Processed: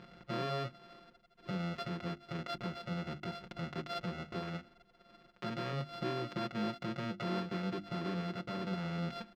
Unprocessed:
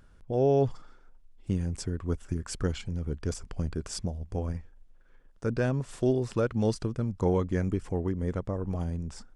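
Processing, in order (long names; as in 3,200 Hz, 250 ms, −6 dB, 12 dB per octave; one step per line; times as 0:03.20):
samples sorted by size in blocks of 64 samples
downward compressor 16 to 1, threshold −38 dBFS, peak gain reduction 18.5 dB
high-frequency loss of the air 230 metres
brickwall limiter −37.5 dBFS, peak gain reduction 10 dB
high-pass filter 180 Hz 12 dB per octave
parametric band 690 Hz −10 dB 0.74 octaves
mains-hum notches 50/100/150/200/250/300/350 Hz
comb filter 5.6 ms, depth 81%
level +12 dB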